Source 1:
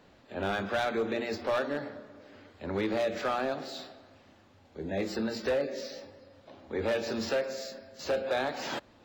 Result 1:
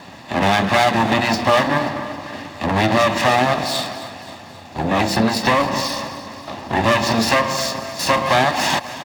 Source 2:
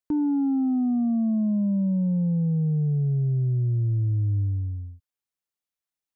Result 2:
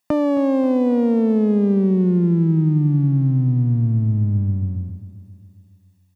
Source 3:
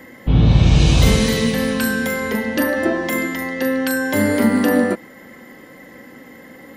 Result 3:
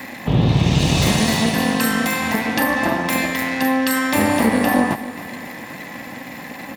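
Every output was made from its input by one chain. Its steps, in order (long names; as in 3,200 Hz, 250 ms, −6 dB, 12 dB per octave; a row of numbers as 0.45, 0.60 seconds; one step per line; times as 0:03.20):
lower of the sound and its delayed copy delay 1.1 ms
high-pass filter 120 Hz 12 dB per octave
notch filter 1,500 Hz, Q 14
downward compressor 1.5 to 1, threshold −45 dBFS
repeating echo 267 ms, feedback 55%, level −15 dB
loudness normalisation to −18 LKFS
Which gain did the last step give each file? +23.0, +16.5, +12.0 decibels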